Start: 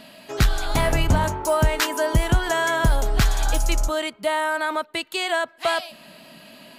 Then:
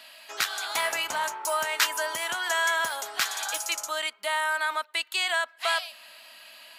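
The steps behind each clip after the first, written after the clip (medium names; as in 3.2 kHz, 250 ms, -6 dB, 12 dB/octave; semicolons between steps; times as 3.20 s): high-pass 1.1 kHz 12 dB/octave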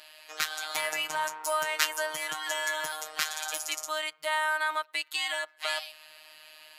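robot voice 155 Hz; trim -1 dB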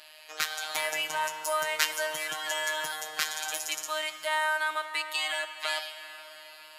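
reverberation RT60 5.2 s, pre-delay 23 ms, DRR 9 dB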